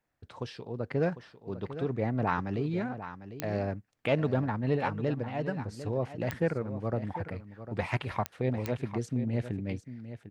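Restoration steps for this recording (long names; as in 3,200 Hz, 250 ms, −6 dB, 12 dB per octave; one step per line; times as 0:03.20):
click removal
echo removal 750 ms −12 dB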